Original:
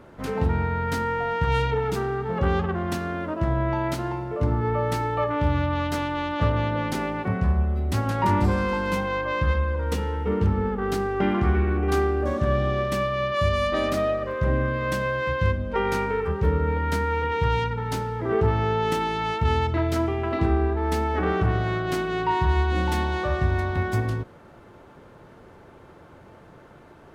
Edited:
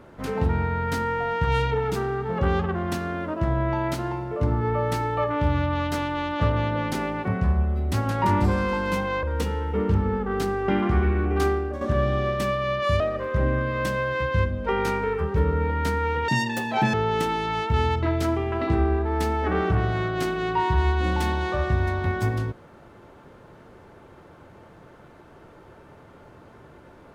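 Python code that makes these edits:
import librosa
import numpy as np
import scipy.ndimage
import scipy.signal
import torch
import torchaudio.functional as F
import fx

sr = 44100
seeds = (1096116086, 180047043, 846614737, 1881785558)

y = fx.edit(x, sr, fx.cut(start_s=9.23, length_s=0.52),
    fx.fade_out_to(start_s=11.99, length_s=0.34, floor_db=-9.5),
    fx.cut(start_s=13.52, length_s=0.55),
    fx.speed_span(start_s=17.35, length_s=1.3, speed=1.98), tone=tone)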